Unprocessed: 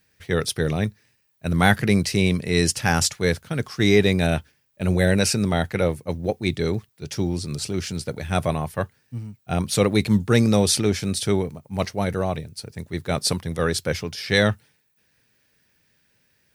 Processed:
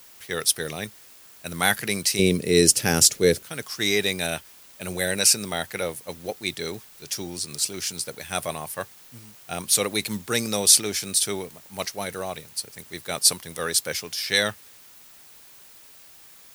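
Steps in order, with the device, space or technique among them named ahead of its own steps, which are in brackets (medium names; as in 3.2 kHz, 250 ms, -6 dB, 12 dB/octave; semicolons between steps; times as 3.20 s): turntable without a phono preamp (RIAA curve recording; white noise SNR 24 dB); 2.19–3.43 s: resonant low shelf 610 Hz +10.5 dB, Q 1.5; trim -4 dB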